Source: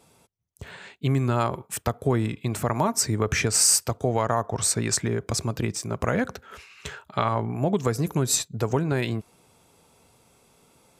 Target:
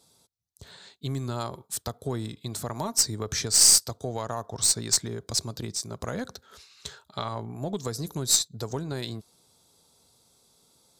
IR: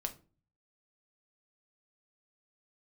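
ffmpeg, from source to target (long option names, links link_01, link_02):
-af "highshelf=frequency=3200:width_type=q:width=3:gain=7,aeval=exprs='1.26*(cos(1*acos(clip(val(0)/1.26,-1,1)))-cos(1*PI/2))+0.0891*(cos(4*acos(clip(val(0)/1.26,-1,1)))-cos(4*PI/2))+0.0224*(cos(6*acos(clip(val(0)/1.26,-1,1)))-cos(6*PI/2))+0.0398*(cos(7*acos(clip(val(0)/1.26,-1,1)))-cos(7*PI/2))+0.00891*(cos(8*acos(clip(val(0)/1.26,-1,1)))-cos(8*PI/2))':channel_layout=same,volume=-6dB"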